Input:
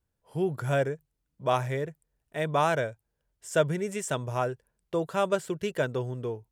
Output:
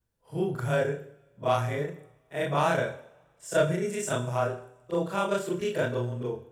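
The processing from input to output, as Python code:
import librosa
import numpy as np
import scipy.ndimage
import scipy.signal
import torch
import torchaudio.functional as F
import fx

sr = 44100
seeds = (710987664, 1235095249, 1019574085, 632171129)

y = fx.frame_reverse(x, sr, frame_ms=82.0)
y = 10.0 ** (-16.0 / 20.0) * np.tanh(y / 10.0 ** (-16.0 / 20.0))
y = fx.rev_double_slope(y, sr, seeds[0], early_s=0.68, late_s=2.8, knee_db=-26, drr_db=8.5)
y = y * 10.0 ** (3.5 / 20.0)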